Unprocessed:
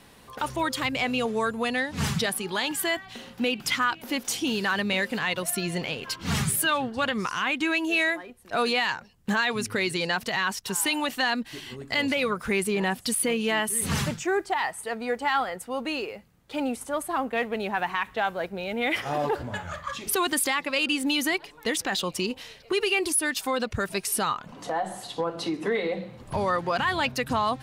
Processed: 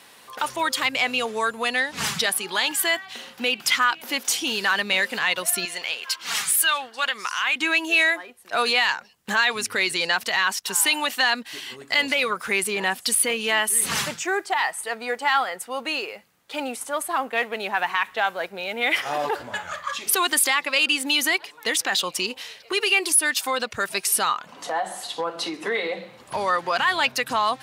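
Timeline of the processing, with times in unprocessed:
0:05.65–0:07.56: high-pass filter 1,100 Hz 6 dB per octave
whole clip: high-pass filter 960 Hz 6 dB per octave; level +6.5 dB

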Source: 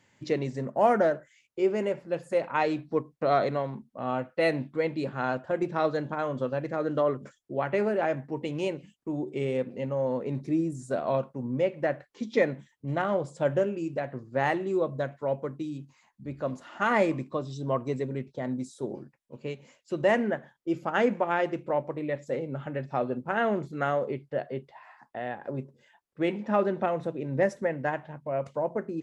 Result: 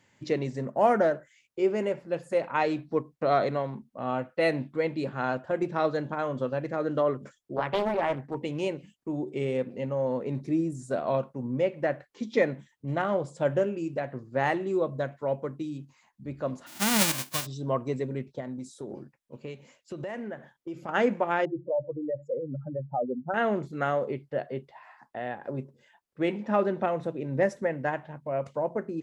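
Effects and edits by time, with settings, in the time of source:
0:07.56–0:08.35: highs frequency-modulated by the lows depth 0.6 ms
0:16.66–0:17.45: spectral envelope flattened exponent 0.1
0:18.40–0:20.89: downward compressor, threshold −33 dBFS
0:21.45–0:23.34: expanding power law on the bin magnitudes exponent 2.9

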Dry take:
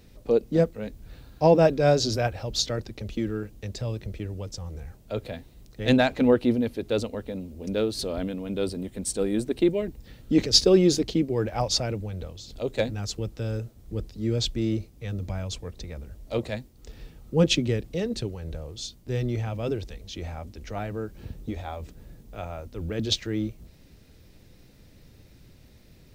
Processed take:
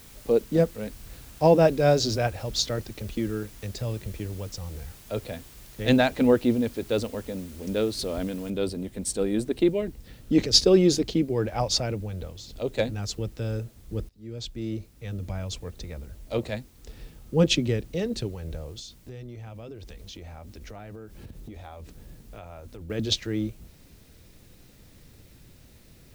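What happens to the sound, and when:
0:08.50: noise floor change −51 dB −62 dB
0:14.09–0:15.92: fade in equal-power, from −23.5 dB
0:18.79–0:22.90: downward compressor, threshold −38 dBFS

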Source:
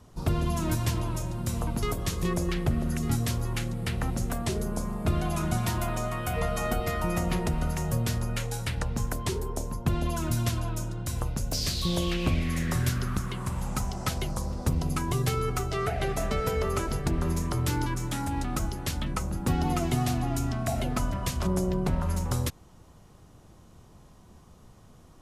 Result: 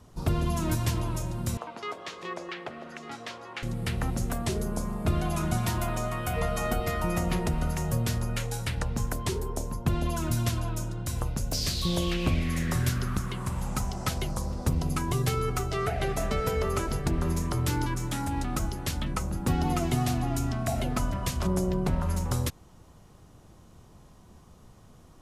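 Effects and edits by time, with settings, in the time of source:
0:01.57–0:03.63: band-pass filter 550–3,500 Hz

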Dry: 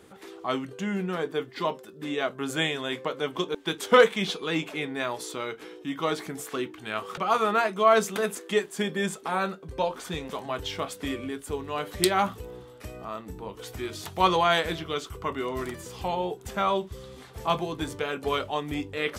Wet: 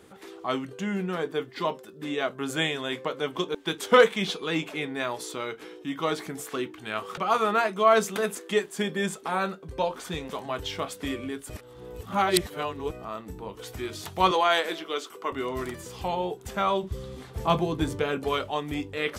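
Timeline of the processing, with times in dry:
0:11.50–0:12.91: reverse
0:14.31–0:15.32: high-pass filter 270 Hz 24 dB per octave
0:16.83–0:18.24: low-shelf EQ 450 Hz +7.5 dB

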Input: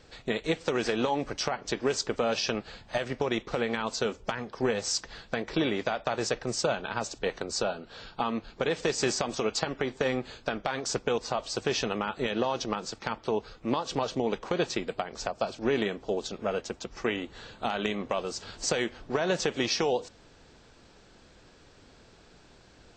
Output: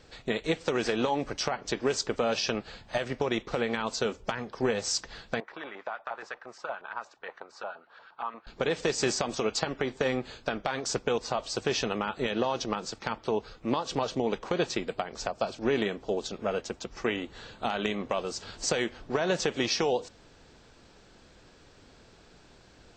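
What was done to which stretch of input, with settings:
0:05.40–0:08.47: auto-filter band-pass saw up 8.5 Hz 830–1,700 Hz

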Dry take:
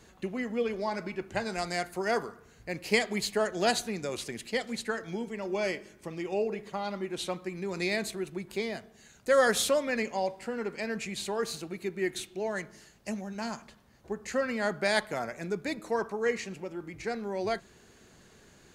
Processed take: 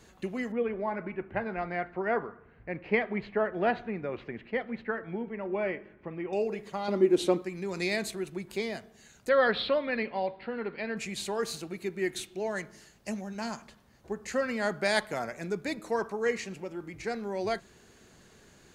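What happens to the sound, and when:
0:00.52–0:06.33: low-pass filter 2,300 Hz 24 dB per octave
0:06.88–0:07.42: parametric band 340 Hz +14.5 dB 1.4 octaves
0:09.29–0:10.97: elliptic low-pass filter 4,200 Hz

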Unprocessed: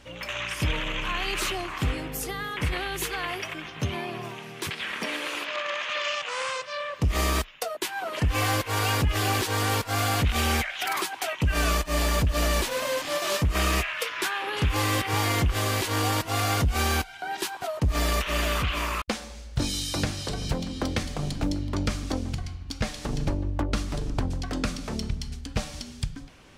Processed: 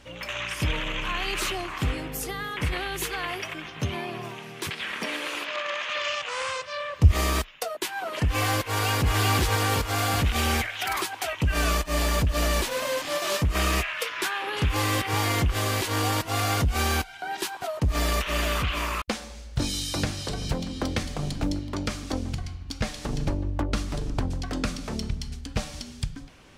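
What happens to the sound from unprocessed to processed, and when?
0:05.95–0:07.13: parametric band 83 Hz +12.5 dB 0.83 octaves
0:08.66–0:09.18: delay throw 370 ms, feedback 55%, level −3 dB
0:21.59–0:22.13: low-shelf EQ 140 Hz −7 dB

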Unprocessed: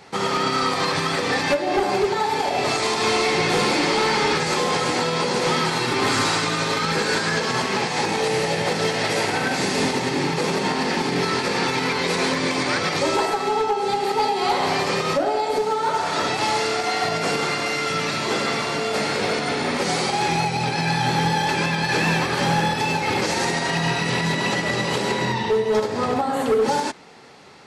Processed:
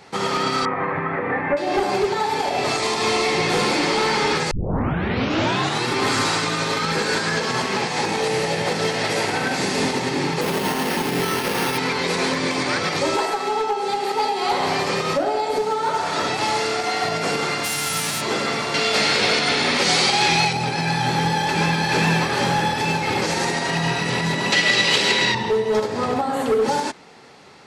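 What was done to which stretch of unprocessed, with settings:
0:00.65–0:01.57: Chebyshev low-pass filter 2,100 Hz, order 4
0:02.79–0:03.48: notch filter 1,500 Hz, Q 11
0:04.51: tape start 1.34 s
0:10.41–0:11.78: bad sample-rate conversion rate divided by 6×, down none, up hold
0:13.16–0:14.51: parametric band 73 Hz −10.5 dB 2.7 octaves
0:17.63–0:18.20: spectral envelope flattened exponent 0.3
0:18.74–0:20.53: parametric band 3,700 Hz +9.5 dB 2.3 octaves
0:21.12–0:21.62: delay throw 430 ms, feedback 70%, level −4 dB
0:24.52–0:25.35: meter weighting curve D

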